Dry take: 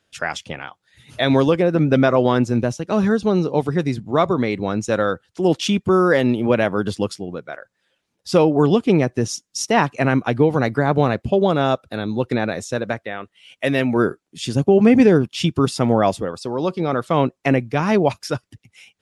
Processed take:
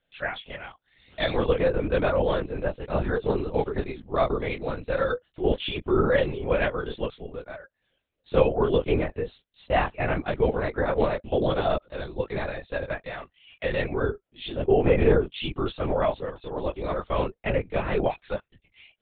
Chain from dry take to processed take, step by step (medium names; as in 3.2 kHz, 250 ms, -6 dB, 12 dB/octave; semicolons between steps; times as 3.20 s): chorus voices 2, 0.17 Hz, delay 24 ms, depth 3.3 ms; ten-band graphic EQ 125 Hz -9 dB, 250 Hz -7 dB, 500 Hz +4 dB, 1 kHz -3 dB; LPC vocoder at 8 kHz whisper; trim -2.5 dB